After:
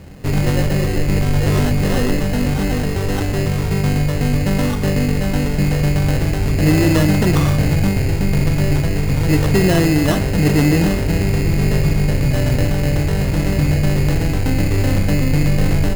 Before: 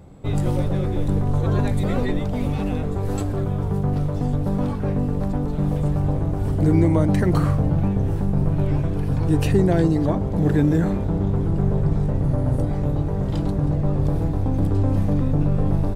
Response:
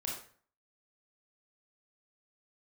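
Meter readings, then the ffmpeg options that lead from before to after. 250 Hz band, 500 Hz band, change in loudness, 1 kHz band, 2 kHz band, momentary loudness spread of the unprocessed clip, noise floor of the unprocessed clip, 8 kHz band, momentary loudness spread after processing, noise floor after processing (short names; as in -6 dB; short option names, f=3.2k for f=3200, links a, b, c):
+4.0 dB, +4.5 dB, +4.5 dB, +4.5 dB, +14.0 dB, 6 LU, -24 dBFS, n/a, 5 LU, -19 dBFS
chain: -filter_complex "[0:a]acrusher=samples=19:mix=1:aa=0.000001,asoftclip=type=tanh:threshold=-14dB,asplit=2[a][b];[1:a]atrim=start_sample=2205[c];[b][c]afir=irnorm=-1:irlink=0,volume=-8.5dB[d];[a][d]amix=inputs=2:normalize=0,volume=4.5dB"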